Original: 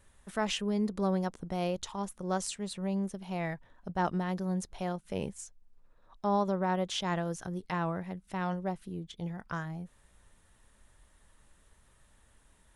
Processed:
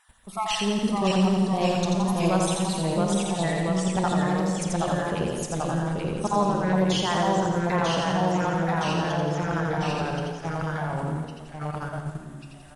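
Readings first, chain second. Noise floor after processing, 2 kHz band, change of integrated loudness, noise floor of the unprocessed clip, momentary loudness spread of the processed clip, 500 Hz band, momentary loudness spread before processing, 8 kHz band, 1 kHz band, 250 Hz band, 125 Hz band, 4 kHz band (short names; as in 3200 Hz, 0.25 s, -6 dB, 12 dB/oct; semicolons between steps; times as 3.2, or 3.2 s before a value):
-43 dBFS, +10.5 dB, +9.0 dB, -65 dBFS, 10 LU, +9.5 dB, 10 LU, +10.0 dB, +10.0 dB, +9.5 dB, +11.5 dB, +10.5 dB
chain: random spectral dropouts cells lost 35%; echoes that change speed 0.534 s, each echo -1 st, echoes 3; on a send: feedback echo 86 ms, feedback 58%, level -4 dB; on the sum: wow and flutter 22 cents; in parallel at +1.5 dB: level quantiser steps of 21 dB; on the sum: Schroeder reverb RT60 1.7 s, combs from 32 ms, DRR 7.5 dB; gain +4 dB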